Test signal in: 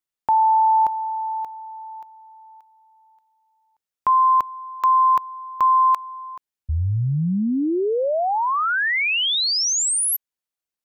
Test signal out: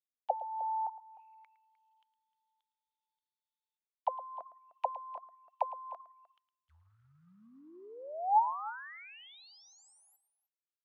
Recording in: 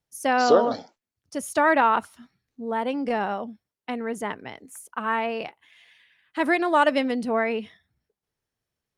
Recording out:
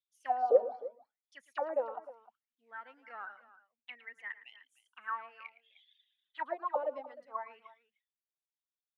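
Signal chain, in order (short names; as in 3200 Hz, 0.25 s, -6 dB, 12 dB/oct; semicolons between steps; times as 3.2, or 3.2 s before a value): reverb removal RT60 1.1 s; companded quantiser 8-bit; auto-wah 520–3600 Hz, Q 13, down, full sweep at -16.5 dBFS; tapped delay 0.111/0.305 s -15.5/-17.5 dB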